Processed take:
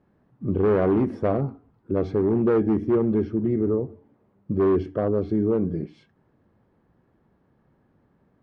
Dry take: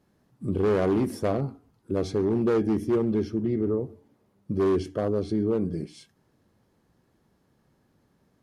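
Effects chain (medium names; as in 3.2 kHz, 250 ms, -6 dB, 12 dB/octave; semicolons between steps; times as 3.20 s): low-pass 1.9 kHz 12 dB/octave; trim +3 dB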